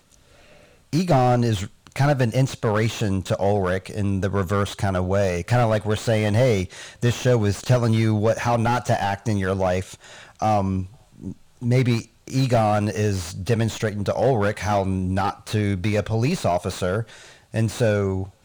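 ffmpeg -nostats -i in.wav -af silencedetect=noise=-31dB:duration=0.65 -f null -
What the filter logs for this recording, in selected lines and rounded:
silence_start: 0.00
silence_end: 0.93 | silence_duration: 0.93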